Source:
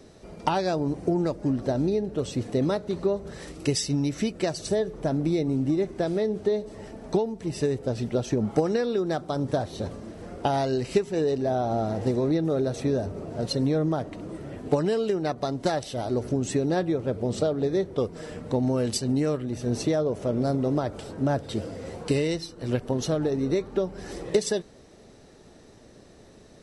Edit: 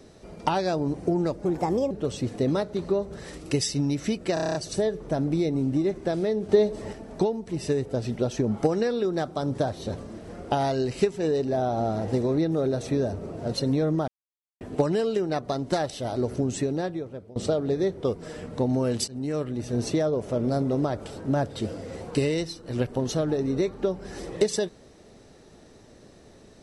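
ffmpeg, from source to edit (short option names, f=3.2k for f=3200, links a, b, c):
-filter_complex "[0:a]asplit=16[a][b][c][d][e][f][g][h][i][j][k][l][m][n][o][p];[a]atrim=end=1.454[q];[b]atrim=start=1.45:end=2.05,asetpts=PTS-STARTPTS,asetrate=57771,aresample=44100,atrim=end_sample=20198,asetpts=PTS-STARTPTS[r];[c]atrim=start=2.046:end=4.512[s];[d]atrim=start=4.478:end=4.512[t];[e]atrim=start=4.478:end=4.512[u];[f]atrim=start=4.478:end=4.512[v];[g]atrim=start=4.478:end=4.512[w];[h]atrim=start=4.478:end=4.512[x];[i]atrim=start=4.478:end=4.512[y];[j]atrim=start=4.478:end=6.422[z];[k]atrim=start=6.418:end=6.862,asetpts=PTS-STARTPTS,volume=5.5dB[aa];[l]atrim=start=6.858:end=14.01,asetpts=PTS-STARTPTS,afade=t=out:st=7.148:d=0.004:c=hsin[ab];[m]atrim=start=14.01:end=14.54,asetpts=PTS-STARTPTS,volume=0[ac];[n]atrim=start=14.54:end=17.29,asetpts=PTS-STARTPTS,afade=t=in:d=0.004:c=hsin,afade=t=out:st=1.87:d=0.88:silence=0.0749894[ad];[o]atrim=start=17.29:end=19.01,asetpts=PTS-STARTPTS,afade=t=in:d=0.004:c=hsin:silence=0.0749894,afade=t=out:st=1.716:d=0.004:c=hsin:silence=0.141254[ae];[p]atrim=start=19.01,asetpts=PTS-STARTPTS,afade=t=in:d=0.4:silence=0.141254[af];[q][r]acrossfade=d=0.004:c1=hsin:c2=hsin[ag];[ag][s]acrossfade=d=0.004:c1=hsin:c2=hsin[ah];[ah][t]acrossfade=d=0.004:c1=hsin:c2=hsin[ai];[ai][u]acrossfade=d=0.004:c1=hsin:c2=hsin[aj];[aj][v]acrossfade=d=0.004:c1=hsin:c2=hsin[ak];[ak][w]acrossfade=d=0.004:c1=hsin:c2=hsin[al];[al][x]acrossfade=d=0.004:c1=hsin:c2=hsin[am];[am][y]acrossfade=d=0.004:c1=hsin:c2=hsin[an];[an][z]acrossfade=d=0.004:c1=hsin:c2=hsin[ao];[ao][aa]acrossfade=d=0.004:c1=hsin:c2=hsin[ap];[ab][ac][ad][ae][af]concat=n=5:v=0:a=1[aq];[ap][aq]acrossfade=d=0.004:c1=hsin:c2=hsin"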